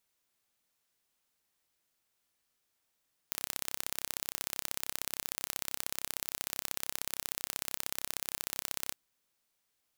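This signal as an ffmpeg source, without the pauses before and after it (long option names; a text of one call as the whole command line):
ffmpeg -f lavfi -i "aevalsrc='0.501*eq(mod(n,1336),0)*(0.5+0.5*eq(mod(n,2672),0))':duration=5.62:sample_rate=44100" out.wav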